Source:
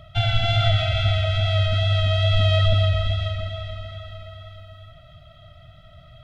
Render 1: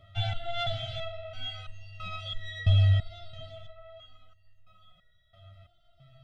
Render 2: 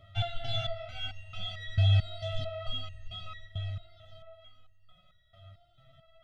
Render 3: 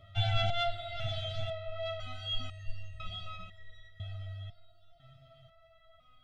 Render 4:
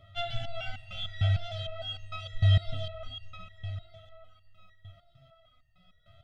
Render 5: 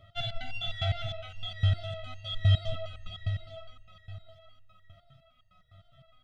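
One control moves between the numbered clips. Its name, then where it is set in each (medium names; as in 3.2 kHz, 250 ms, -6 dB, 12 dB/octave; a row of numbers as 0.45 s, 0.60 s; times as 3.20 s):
resonator arpeggio, rate: 3 Hz, 4.5 Hz, 2 Hz, 6.6 Hz, 9.8 Hz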